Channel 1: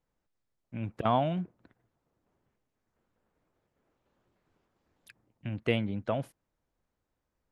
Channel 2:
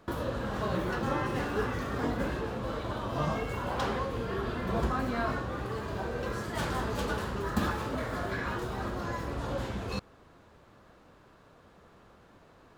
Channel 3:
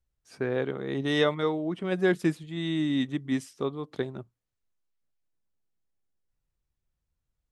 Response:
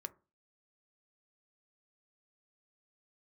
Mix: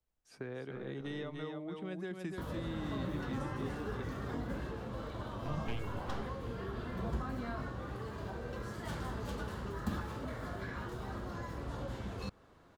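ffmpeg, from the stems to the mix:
-filter_complex "[0:a]aeval=exprs='abs(val(0))':channel_layout=same,volume=-8dB[link_01];[1:a]bandreject=frequency=2500:width=25,adelay=2300,volume=-5dB[link_02];[2:a]acrossover=split=960|3000[link_03][link_04][link_05];[link_03]acompressor=threshold=-29dB:ratio=4[link_06];[link_04]acompressor=threshold=-38dB:ratio=4[link_07];[link_05]acompressor=threshold=-47dB:ratio=4[link_08];[link_06][link_07][link_08]amix=inputs=3:normalize=0,volume=-7.5dB,asplit=3[link_09][link_10][link_11];[link_10]volume=-5dB[link_12];[link_11]apad=whole_len=331319[link_13];[link_01][link_13]sidechaincompress=threshold=-57dB:ratio=8:attack=16:release=162[link_14];[link_12]aecho=0:1:292:1[link_15];[link_14][link_02][link_09][link_15]amix=inputs=4:normalize=0,acrossover=split=240[link_16][link_17];[link_17]acompressor=threshold=-45dB:ratio=2[link_18];[link_16][link_18]amix=inputs=2:normalize=0"

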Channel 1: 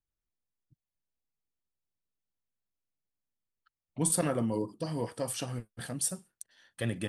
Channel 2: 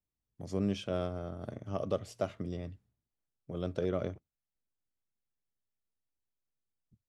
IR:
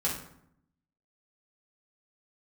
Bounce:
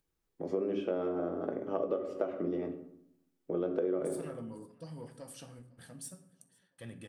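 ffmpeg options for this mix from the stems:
-filter_complex "[0:a]acompressor=mode=upward:threshold=-53dB:ratio=2.5,asoftclip=type=tanh:threshold=-20.5dB,volume=-15.5dB,asplit=3[link_01][link_02][link_03];[link_02]volume=-11.5dB[link_04];[link_03]volume=-23dB[link_05];[1:a]acrossover=split=250 2400:gain=0.0631 1 0.112[link_06][link_07][link_08];[link_06][link_07][link_08]amix=inputs=3:normalize=0,equalizer=frequency=350:width=1.7:gain=10.5,volume=2dB,asplit=2[link_09][link_10];[link_10]volume=-7dB[link_11];[2:a]atrim=start_sample=2205[link_12];[link_04][link_11]amix=inputs=2:normalize=0[link_13];[link_13][link_12]afir=irnorm=-1:irlink=0[link_14];[link_05]aecho=0:1:504|1008|1512|2016|2520|3024|3528:1|0.51|0.26|0.133|0.0677|0.0345|0.0176[link_15];[link_01][link_09][link_14][link_15]amix=inputs=4:normalize=0,acompressor=threshold=-29dB:ratio=6"

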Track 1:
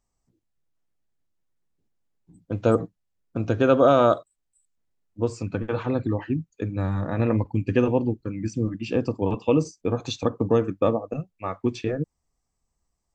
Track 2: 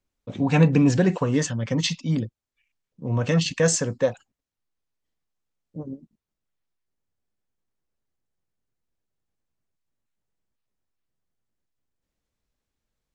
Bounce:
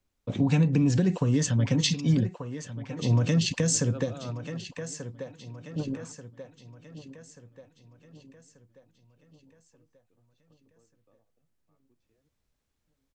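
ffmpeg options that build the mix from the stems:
ffmpeg -i stem1.wav -i stem2.wav -filter_complex "[0:a]adelay=250,volume=-20dB[link_01];[1:a]equalizer=frequency=100:width_type=o:width=1.1:gain=3,acompressor=threshold=-20dB:ratio=6,volume=2dB,asplit=3[link_02][link_03][link_04];[link_03]volume=-14dB[link_05];[link_04]apad=whole_len=590511[link_06];[link_01][link_06]sidechaingate=range=-28dB:threshold=-49dB:ratio=16:detection=peak[link_07];[link_05]aecho=0:1:1185|2370|3555|4740|5925|7110:1|0.46|0.212|0.0973|0.0448|0.0206[link_08];[link_07][link_02][link_08]amix=inputs=3:normalize=0,acrossover=split=350|3000[link_09][link_10][link_11];[link_10]acompressor=threshold=-35dB:ratio=6[link_12];[link_09][link_12][link_11]amix=inputs=3:normalize=0" out.wav

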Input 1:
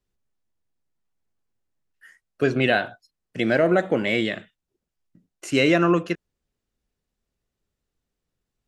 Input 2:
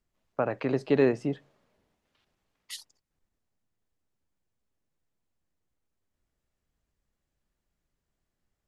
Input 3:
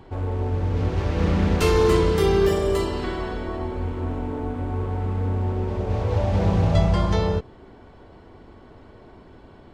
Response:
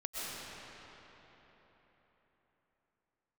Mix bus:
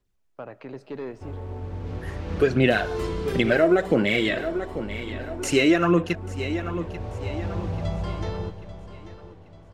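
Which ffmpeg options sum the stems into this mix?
-filter_complex "[0:a]dynaudnorm=framelen=640:gausssize=3:maxgain=11.5dB,aphaser=in_gain=1:out_gain=1:delay=3.1:decay=0.53:speed=1.5:type=sinusoidal,volume=-0.5dB,asplit=2[link_01][link_02];[link_02]volume=-18dB[link_03];[1:a]asoftclip=type=tanh:threshold=-17.5dB,volume=-9.5dB,asplit=2[link_04][link_05];[link_05]volume=-21dB[link_06];[2:a]adelay=1100,volume=-10dB,asplit=3[link_07][link_08][link_09];[link_08]volume=-16.5dB[link_10];[link_09]volume=-13.5dB[link_11];[3:a]atrim=start_sample=2205[link_12];[link_06][link_10]amix=inputs=2:normalize=0[link_13];[link_13][link_12]afir=irnorm=-1:irlink=0[link_14];[link_03][link_11]amix=inputs=2:normalize=0,aecho=0:1:839|1678|2517|3356|4195|5034:1|0.42|0.176|0.0741|0.0311|0.0131[link_15];[link_01][link_04][link_07][link_14][link_15]amix=inputs=5:normalize=0,acompressor=threshold=-22dB:ratio=2"

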